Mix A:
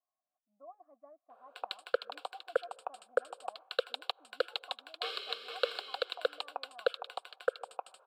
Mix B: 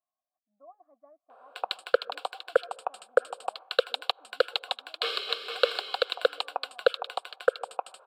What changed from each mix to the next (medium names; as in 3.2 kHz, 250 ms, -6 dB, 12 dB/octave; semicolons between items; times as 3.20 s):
background +8.0 dB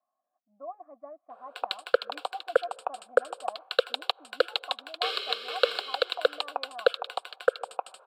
speech +11.5 dB